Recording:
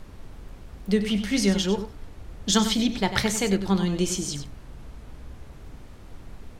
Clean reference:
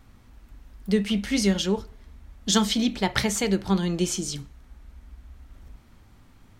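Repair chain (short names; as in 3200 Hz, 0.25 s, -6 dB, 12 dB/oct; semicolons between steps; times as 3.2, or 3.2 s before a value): noise print and reduce 10 dB; inverse comb 96 ms -10.5 dB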